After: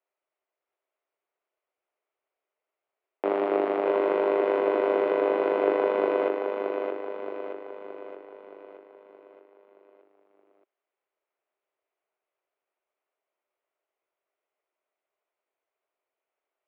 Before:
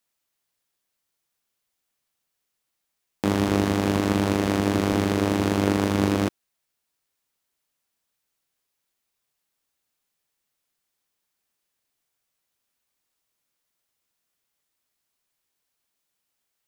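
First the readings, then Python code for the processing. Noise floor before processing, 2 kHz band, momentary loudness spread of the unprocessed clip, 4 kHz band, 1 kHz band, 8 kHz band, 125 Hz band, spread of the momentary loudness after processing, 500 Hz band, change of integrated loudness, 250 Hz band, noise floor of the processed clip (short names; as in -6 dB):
-80 dBFS, -4.0 dB, 3 LU, under -10 dB, 0.0 dB, under -35 dB, under -30 dB, 17 LU, +4.5 dB, -2.5 dB, -10.0 dB, under -85 dBFS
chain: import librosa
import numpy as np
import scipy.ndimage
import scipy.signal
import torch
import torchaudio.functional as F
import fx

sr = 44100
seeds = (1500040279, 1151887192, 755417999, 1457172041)

y = fx.cabinet(x, sr, low_hz=370.0, low_slope=24, high_hz=2300.0, hz=(390.0, 630.0, 1700.0), db=(7, 8, -6))
y = fx.echo_feedback(y, sr, ms=622, feedback_pct=52, wet_db=-5.0)
y = y * 10.0 ** (-2.0 / 20.0)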